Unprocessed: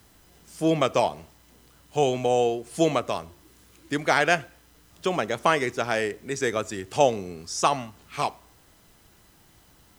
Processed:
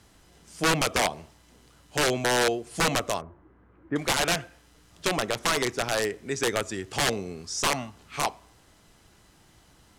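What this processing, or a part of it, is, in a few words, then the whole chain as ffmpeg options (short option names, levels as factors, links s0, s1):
overflowing digital effects unit: -filter_complex "[0:a]asettb=1/sr,asplit=3[s0][s1][s2];[s0]atrim=end=3.214[s3];[s1]atrim=start=3.21:end=3.96,asetpts=PTS-STARTPTS,afade=t=in:d=0.004:c=qsin,afade=t=out:st=0.746:d=0.004:c=qsin,lowpass=f=1600:w=0.5412,lowpass=f=1600:w=1.3066[s4];[s2]atrim=start=3.956[s5];[s3][s4]acrossfade=d=0.004:c1=hsin:c2=qsin[s6];[s6][s5]acrossfade=d=0.004:c1=qsin:c2=hsin,aeval=exprs='(mod(6.31*val(0)+1,2)-1)/6.31':c=same,lowpass=10000"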